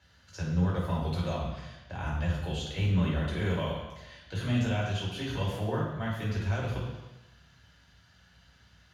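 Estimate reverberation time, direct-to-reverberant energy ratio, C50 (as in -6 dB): 1.1 s, -5.5 dB, 1.5 dB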